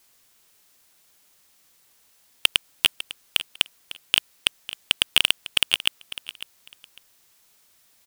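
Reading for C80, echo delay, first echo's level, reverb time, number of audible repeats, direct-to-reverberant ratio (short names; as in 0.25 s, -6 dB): none, 0.551 s, -15.0 dB, none, 2, none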